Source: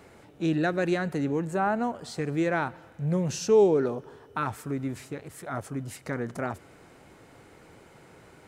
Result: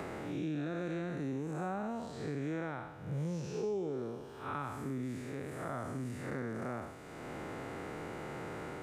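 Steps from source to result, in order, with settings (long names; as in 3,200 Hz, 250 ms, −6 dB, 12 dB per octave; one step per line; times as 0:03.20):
spectrum smeared in time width 186 ms
wrong playback speed 25 fps video run at 24 fps
multiband upward and downward compressor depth 100%
level −8 dB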